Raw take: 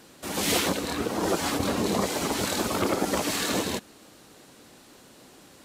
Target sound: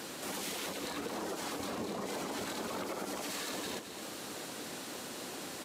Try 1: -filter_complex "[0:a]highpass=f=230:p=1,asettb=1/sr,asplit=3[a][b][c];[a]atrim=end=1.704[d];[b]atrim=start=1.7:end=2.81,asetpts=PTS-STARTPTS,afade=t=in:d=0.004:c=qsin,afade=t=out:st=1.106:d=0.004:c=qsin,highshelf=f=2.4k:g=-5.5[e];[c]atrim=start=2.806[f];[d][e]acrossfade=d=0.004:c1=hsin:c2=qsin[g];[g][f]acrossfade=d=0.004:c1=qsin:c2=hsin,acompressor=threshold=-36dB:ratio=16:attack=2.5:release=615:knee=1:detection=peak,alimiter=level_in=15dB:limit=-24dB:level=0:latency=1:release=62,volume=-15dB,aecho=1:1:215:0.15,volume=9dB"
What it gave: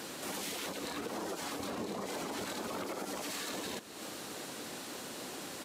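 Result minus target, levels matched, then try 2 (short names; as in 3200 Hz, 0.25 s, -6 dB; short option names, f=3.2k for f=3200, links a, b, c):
echo-to-direct -8.5 dB
-filter_complex "[0:a]highpass=f=230:p=1,asettb=1/sr,asplit=3[a][b][c];[a]atrim=end=1.704[d];[b]atrim=start=1.7:end=2.81,asetpts=PTS-STARTPTS,afade=t=in:d=0.004:c=qsin,afade=t=out:st=1.106:d=0.004:c=qsin,highshelf=f=2.4k:g=-5.5[e];[c]atrim=start=2.806[f];[d][e]acrossfade=d=0.004:c1=hsin:c2=qsin[g];[g][f]acrossfade=d=0.004:c1=qsin:c2=hsin,acompressor=threshold=-36dB:ratio=16:attack=2.5:release=615:knee=1:detection=peak,alimiter=level_in=15dB:limit=-24dB:level=0:latency=1:release=62,volume=-15dB,aecho=1:1:215:0.398,volume=9dB"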